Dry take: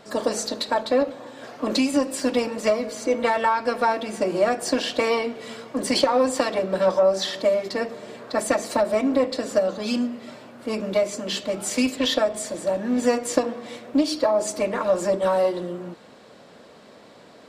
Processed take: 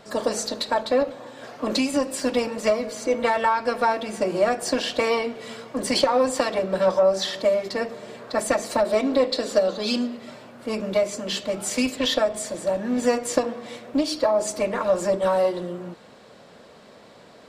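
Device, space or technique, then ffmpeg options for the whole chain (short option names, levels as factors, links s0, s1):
low shelf boost with a cut just above: -filter_complex "[0:a]lowshelf=f=72:g=5.5,equalizer=f=290:t=o:w=0.52:g=-3.5,asettb=1/sr,asplit=3[s0][s1][s2];[s0]atrim=end=8.854[s3];[s1]atrim=start=8.85:end=10.17,asetpts=PTS-STARTPTS,afade=t=in:d=0.004:c=qsin,afade=t=out:st=1.316:d=0.004:c=qsin,equalizer=f=100:t=o:w=0.67:g=-11,equalizer=f=400:t=o:w=0.67:g=4,equalizer=f=4000:t=o:w=0.67:g=8[s4];[s2]atrim=start=10.166[s5];[s3][s4]acrossfade=d=0.004:c1=hsin:c2=qsin[s6];[s6][s5]acrossfade=d=0.004:c1=qsin:c2=hsin"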